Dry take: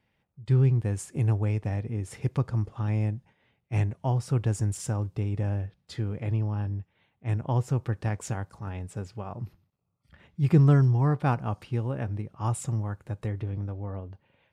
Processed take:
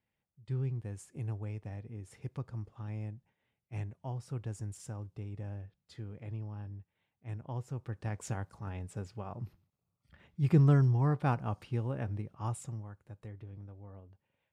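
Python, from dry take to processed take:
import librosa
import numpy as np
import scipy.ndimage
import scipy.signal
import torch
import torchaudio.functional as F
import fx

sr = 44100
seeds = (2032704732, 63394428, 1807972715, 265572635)

y = fx.gain(x, sr, db=fx.line((7.72, -13.0), (8.32, -5.0), (12.31, -5.0), (12.92, -15.0)))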